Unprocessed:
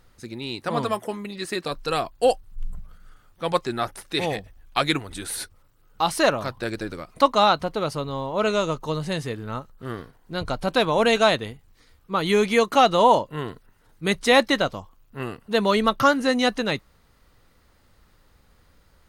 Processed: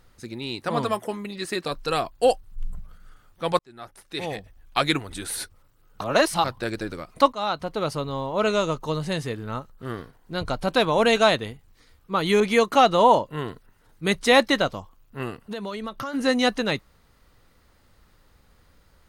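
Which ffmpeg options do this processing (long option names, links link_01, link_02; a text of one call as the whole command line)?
ffmpeg -i in.wav -filter_complex "[0:a]asettb=1/sr,asplit=3[link_01][link_02][link_03];[link_01]atrim=end=12.404[link_04];[link_02]atrim=start=12.4:end=13.23,asetpts=PTS-STARTPTS,afade=type=in:duration=0.004:curve=qsin,afade=type=out:start_time=0.826:duration=0.004:curve=qsin,adynamicequalizer=threshold=0.0355:dfrequency=2500:dqfactor=0.7:tfrequency=2500:tqfactor=0.7:attack=5:release=100:ratio=0.375:range=2:mode=cutabove:tftype=highshelf[link_05];[link_03]atrim=start=13.226[link_06];[link_04][link_05]acrossfade=duration=0.004:curve1=hsin:curve2=qsin[link_07];[link_07][link_06]acrossfade=duration=0.004:curve1=qsin:curve2=hsin,asplit=3[link_08][link_09][link_10];[link_08]afade=type=out:start_time=15.3:duration=0.02[link_11];[link_09]acompressor=threshold=-29dB:ratio=8:attack=3.2:release=140:knee=1:detection=peak,afade=type=in:start_time=15.3:duration=0.02,afade=type=out:start_time=16.13:duration=0.02[link_12];[link_10]afade=type=in:start_time=16.13:duration=0.02[link_13];[link_11][link_12][link_13]amix=inputs=3:normalize=0,asplit=5[link_14][link_15][link_16][link_17][link_18];[link_14]atrim=end=3.59,asetpts=PTS-STARTPTS,afade=type=out:start_time=3.586:duration=0.004:curve=hsin[link_19];[link_15]atrim=start=3.59:end=6.012,asetpts=PTS-STARTPTS,afade=type=in:duration=1.21[link_20];[link_16]atrim=start=6.008:end=6.442,asetpts=PTS-STARTPTS,areverse[link_21];[link_17]atrim=start=6.438:end=7.33,asetpts=PTS-STARTPTS,afade=type=out:start_time=0.888:duration=0.004:curve=hsin:silence=0.158489[link_22];[link_18]atrim=start=7.33,asetpts=PTS-STARTPTS,afade=type=in:duration=0.53:silence=0.158489[link_23];[link_19][link_20]concat=n=2:v=0:a=1[link_24];[link_24][link_21]acrossfade=duration=0.004:curve1=hsin:curve2=hsin[link_25];[link_22][link_23]concat=n=2:v=0:a=1[link_26];[link_25][link_26]acrossfade=duration=0.004:curve1=hsin:curve2=hsin" out.wav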